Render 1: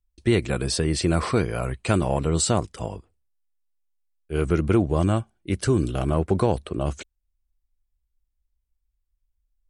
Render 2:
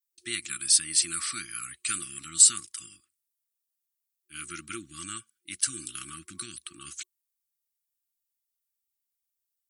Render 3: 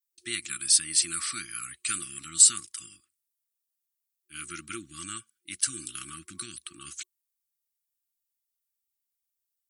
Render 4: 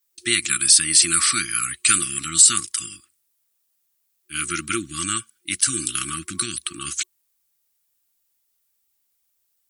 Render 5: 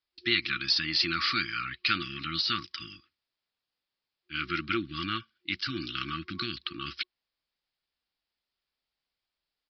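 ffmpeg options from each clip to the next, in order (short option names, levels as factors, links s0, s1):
-af "adynamicequalizer=threshold=0.00316:dfrequency=9400:dqfactor=3.1:tfrequency=9400:tqfactor=3.1:attack=5:release=100:ratio=0.375:range=3.5:mode=boostabove:tftype=bell,afftfilt=real='re*(1-between(b*sr/4096,360,1100))':imag='im*(1-between(b*sr/4096,360,1100))':win_size=4096:overlap=0.75,aderivative,volume=2"
-af anull
-af "alimiter=level_in=5.31:limit=0.891:release=50:level=0:latency=1,volume=0.891"
-filter_complex "[0:a]asplit=2[s0][s1];[s1]asoftclip=type=tanh:threshold=0.112,volume=0.376[s2];[s0][s2]amix=inputs=2:normalize=0,aresample=11025,aresample=44100,volume=0.501"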